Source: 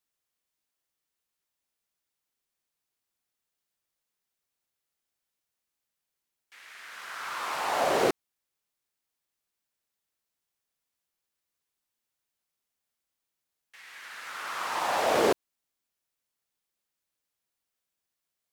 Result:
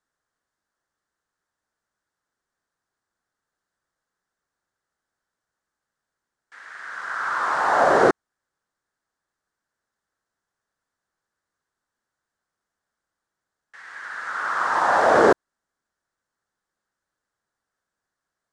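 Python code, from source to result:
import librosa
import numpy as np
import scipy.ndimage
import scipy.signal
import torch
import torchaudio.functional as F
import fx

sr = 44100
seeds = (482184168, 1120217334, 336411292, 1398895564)

y = scipy.signal.sosfilt(scipy.signal.butter(4, 8700.0, 'lowpass', fs=sr, output='sos'), x)
y = fx.high_shelf_res(y, sr, hz=2000.0, db=-7.0, q=3.0)
y = F.gain(torch.from_numpy(y), 7.5).numpy()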